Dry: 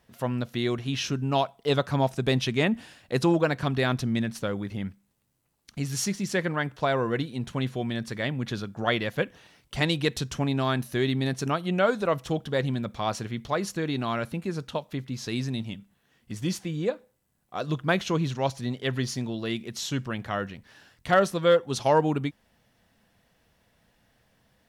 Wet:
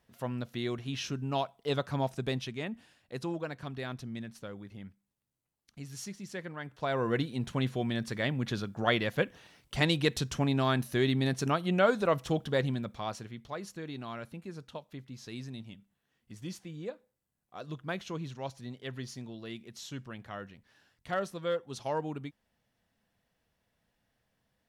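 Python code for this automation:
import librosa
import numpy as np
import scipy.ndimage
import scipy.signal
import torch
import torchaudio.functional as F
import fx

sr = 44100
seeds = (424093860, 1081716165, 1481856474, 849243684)

y = fx.gain(x, sr, db=fx.line((2.2, -7.0), (2.6, -13.5), (6.59, -13.5), (7.11, -2.0), (12.54, -2.0), (13.4, -12.0)))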